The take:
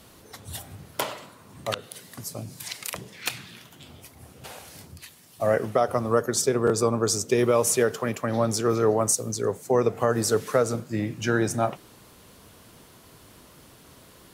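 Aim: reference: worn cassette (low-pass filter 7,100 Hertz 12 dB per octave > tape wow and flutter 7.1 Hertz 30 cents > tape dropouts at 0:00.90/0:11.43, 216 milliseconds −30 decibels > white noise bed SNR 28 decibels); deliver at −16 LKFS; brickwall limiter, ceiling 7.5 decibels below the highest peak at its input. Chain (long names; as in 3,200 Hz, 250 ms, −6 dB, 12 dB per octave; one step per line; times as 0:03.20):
brickwall limiter −17.5 dBFS
low-pass filter 7,100 Hz 12 dB per octave
tape wow and flutter 7.1 Hz 30 cents
tape dropouts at 0:00.90/0:11.43, 216 ms −30 dB
white noise bed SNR 28 dB
level +14 dB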